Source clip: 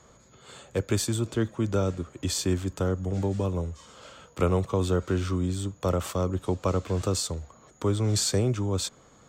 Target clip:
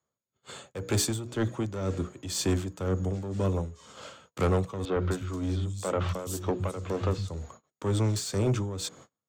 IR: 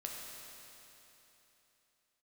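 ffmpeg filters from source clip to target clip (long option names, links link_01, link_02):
-filter_complex "[0:a]highpass=frequency=76:width=0.5412,highpass=frequency=76:width=1.3066,bandreject=frequency=60:width_type=h:width=6,bandreject=frequency=120:width_type=h:width=6,bandreject=frequency=180:width_type=h:width=6,bandreject=frequency=240:width_type=h:width=6,bandreject=frequency=300:width_type=h:width=6,bandreject=frequency=360:width_type=h:width=6,bandreject=frequency=420:width_type=h:width=6,bandreject=frequency=480:width_type=h:width=6,agate=range=-32dB:threshold=-50dB:ratio=16:detection=peak,acontrast=54,asoftclip=type=tanh:threshold=-17dB,tremolo=f=2:d=0.71,asettb=1/sr,asplit=3[link_01][link_02][link_03];[link_01]atrim=end=4.854[link_04];[link_02]atrim=start=4.85:end=7.29,asetpts=PTS-STARTPTS,afade=type=in:duration=0.004:curve=qsin,afade=type=out:start_time=2.436:duration=0.004:curve=qsin,acrossover=split=170|4000[link_05][link_06][link_07];[link_05]adelay=110[link_08];[link_07]adelay=260[link_09];[link_08][link_06][link_09]amix=inputs=3:normalize=0,atrim=end_sample=107604[link_10];[link_03]atrim=start=7.286[link_11];[link_04][link_10]acrossfade=duration=0.004:curve1=hsin:curve2=qsin[link_12];[link_12][link_11]acrossfade=duration=0.004:curve1=qsin:curve2=hsin,volume=-2dB"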